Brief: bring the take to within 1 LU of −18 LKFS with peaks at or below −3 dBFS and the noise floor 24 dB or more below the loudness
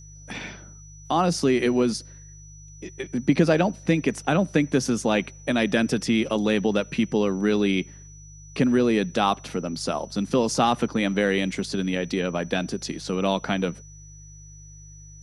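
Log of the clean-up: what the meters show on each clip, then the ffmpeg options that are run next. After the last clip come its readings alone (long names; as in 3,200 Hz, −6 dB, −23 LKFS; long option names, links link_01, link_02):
mains hum 50 Hz; hum harmonics up to 150 Hz; level of the hum −43 dBFS; interfering tone 5,900 Hz; level of the tone −48 dBFS; integrated loudness −24.0 LKFS; sample peak −6.5 dBFS; target loudness −18.0 LKFS
→ -af "bandreject=frequency=50:width_type=h:width=4,bandreject=frequency=100:width_type=h:width=4,bandreject=frequency=150:width_type=h:width=4"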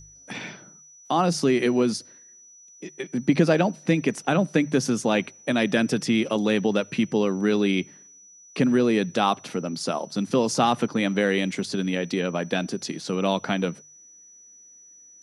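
mains hum none found; interfering tone 5,900 Hz; level of the tone −48 dBFS
→ -af "bandreject=frequency=5900:width=30"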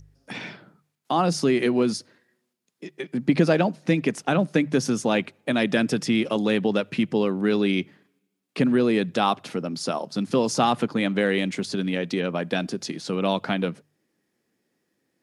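interfering tone none found; integrated loudness −24.0 LKFS; sample peak −6.5 dBFS; target loudness −18.0 LKFS
→ -af "volume=6dB,alimiter=limit=-3dB:level=0:latency=1"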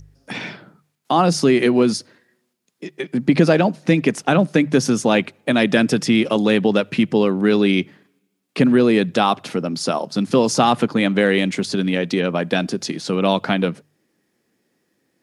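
integrated loudness −18.0 LKFS; sample peak −3.0 dBFS; background noise floor −70 dBFS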